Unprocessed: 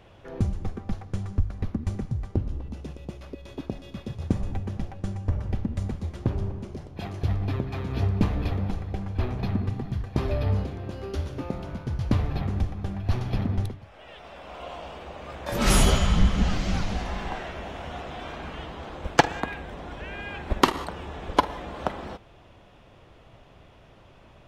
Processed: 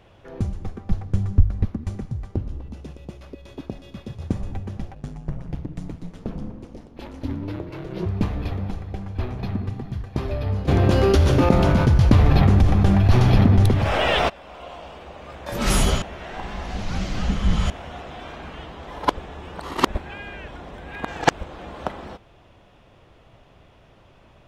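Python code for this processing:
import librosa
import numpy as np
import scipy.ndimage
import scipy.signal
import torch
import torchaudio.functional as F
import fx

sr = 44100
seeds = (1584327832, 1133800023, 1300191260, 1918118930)

y = fx.low_shelf(x, sr, hz=310.0, db=9.5, at=(0.9, 1.65))
y = fx.ring_mod(y, sr, carrier_hz=fx.line((4.94, 50.0), (8.05, 270.0)), at=(4.94, 8.05), fade=0.02)
y = fx.env_flatten(y, sr, amount_pct=70, at=(10.67, 14.28), fade=0.02)
y = fx.edit(y, sr, fx.reverse_span(start_s=16.02, length_s=1.68),
    fx.reverse_span(start_s=18.87, length_s=2.74), tone=tone)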